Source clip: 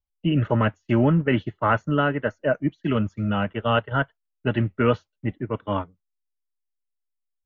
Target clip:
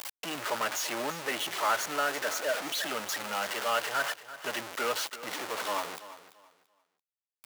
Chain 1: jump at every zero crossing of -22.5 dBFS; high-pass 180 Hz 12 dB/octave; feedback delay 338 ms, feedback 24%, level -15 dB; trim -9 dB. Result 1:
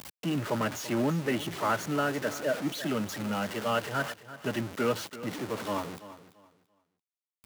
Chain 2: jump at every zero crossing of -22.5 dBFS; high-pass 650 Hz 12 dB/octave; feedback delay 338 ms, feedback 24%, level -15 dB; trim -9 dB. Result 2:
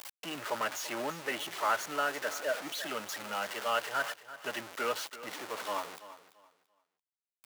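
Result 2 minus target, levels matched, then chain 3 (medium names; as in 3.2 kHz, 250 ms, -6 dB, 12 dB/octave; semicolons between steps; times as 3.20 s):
jump at every zero crossing: distortion -4 dB
jump at every zero crossing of -16.5 dBFS; high-pass 650 Hz 12 dB/octave; feedback delay 338 ms, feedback 24%, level -15 dB; trim -9 dB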